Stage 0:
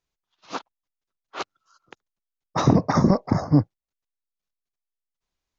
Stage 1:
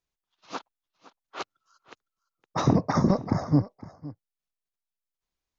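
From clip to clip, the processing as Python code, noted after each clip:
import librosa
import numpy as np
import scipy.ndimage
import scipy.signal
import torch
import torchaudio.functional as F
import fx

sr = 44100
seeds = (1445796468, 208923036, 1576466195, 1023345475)

y = x + 10.0 ** (-18.0 / 20.0) * np.pad(x, (int(512 * sr / 1000.0), 0))[:len(x)]
y = y * 10.0 ** (-4.0 / 20.0)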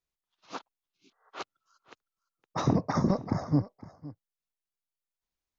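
y = fx.spec_repair(x, sr, seeds[0], start_s=0.94, length_s=0.33, low_hz=430.0, high_hz=2100.0, source='both')
y = y * 10.0 ** (-4.0 / 20.0)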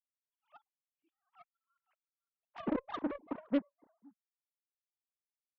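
y = fx.sine_speech(x, sr)
y = fx.cheby_harmonics(y, sr, harmonics=(7,), levels_db=(-19,), full_scale_db=-13.0)
y = fx.doppler_dist(y, sr, depth_ms=0.44)
y = y * 10.0 ** (-7.5 / 20.0)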